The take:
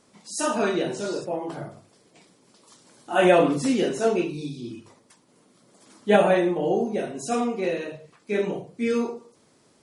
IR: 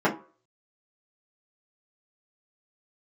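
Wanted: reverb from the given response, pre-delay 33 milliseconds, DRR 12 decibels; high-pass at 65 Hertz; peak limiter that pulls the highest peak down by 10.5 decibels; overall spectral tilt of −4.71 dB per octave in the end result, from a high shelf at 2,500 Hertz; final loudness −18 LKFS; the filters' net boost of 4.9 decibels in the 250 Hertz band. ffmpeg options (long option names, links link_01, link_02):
-filter_complex "[0:a]highpass=65,equalizer=frequency=250:width_type=o:gain=6.5,highshelf=frequency=2500:gain=-4.5,alimiter=limit=-13.5dB:level=0:latency=1,asplit=2[link_01][link_02];[1:a]atrim=start_sample=2205,adelay=33[link_03];[link_02][link_03]afir=irnorm=-1:irlink=0,volume=-28dB[link_04];[link_01][link_04]amix=inputs=2:normalize=0,volume=5.5dB"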